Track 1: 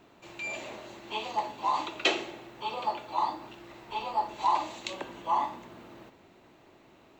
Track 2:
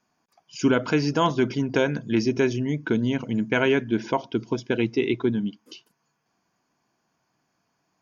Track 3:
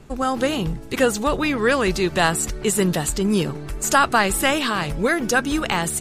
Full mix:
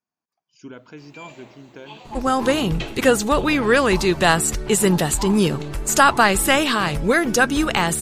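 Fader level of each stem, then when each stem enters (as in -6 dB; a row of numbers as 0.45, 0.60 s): -6.5, -18.5, +2.5 dB; 0.75, 0.00, 2.05 s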